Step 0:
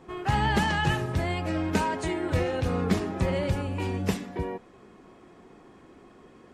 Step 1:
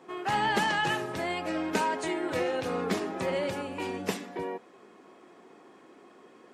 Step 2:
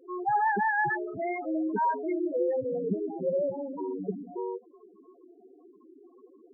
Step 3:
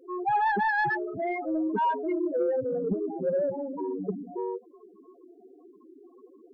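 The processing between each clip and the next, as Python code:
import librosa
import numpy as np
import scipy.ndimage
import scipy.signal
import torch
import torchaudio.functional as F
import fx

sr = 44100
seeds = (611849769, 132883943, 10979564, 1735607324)

y1 = scipy.signal.sosfilt(scipy.signal.butter(2, 290.0, 'highpass', fs=sr, output='sos'), x)
y2 = fx.spec_topn(y1, sr, count=4)
y2 = y2 * 10.0 ** (4.0 / 20.0)
y3 = 10.0 ** (-19.0 / 20.0) * np.tanh(y2 / 10.0 ** (-19.0 / 20.0))
y3 = y3 * 10.0 ** (2.0 / 20.0)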